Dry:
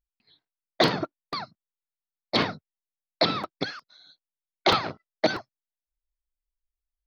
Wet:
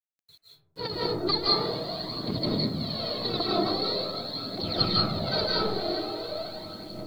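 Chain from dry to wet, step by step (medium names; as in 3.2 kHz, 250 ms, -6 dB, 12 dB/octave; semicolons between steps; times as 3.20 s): tilt shelf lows +8.5 dB, about 820 Hz; echo that smears into a reverb 542 ms, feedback 52%, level -13.5 dB; compressor with a negative ratio -27 dBFS, ratio -1; granulator, pitch spread up and down by 0 st; spectral noise reduction 10 dB; phaser 0.44 Hz, delay 2.9 ms, feedback 70%; resonant low-pass 4.3 kHz, resonance Q 14; bit crusher 9-bit; reverberation RT60 0.95 s, pre-delay 130 ms, DRR -5 dB; trim -7 dB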